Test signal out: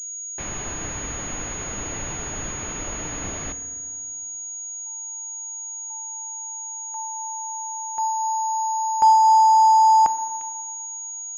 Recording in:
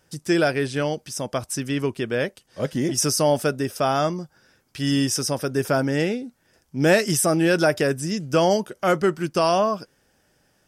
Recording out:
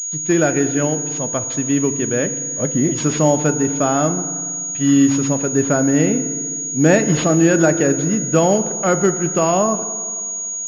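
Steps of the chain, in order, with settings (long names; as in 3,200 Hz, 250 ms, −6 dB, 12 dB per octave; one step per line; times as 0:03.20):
dynamic equaliser 210 Hz, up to +6 dB, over −35 dBFS, Q 0.93
feedback delay network reverb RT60 2.1 s, low-frequency decay 1.1×, high-frequency decay 0.5×, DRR 10 dB
switching amplifier with a slow clock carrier 6,700 Hz
level +1.5 dB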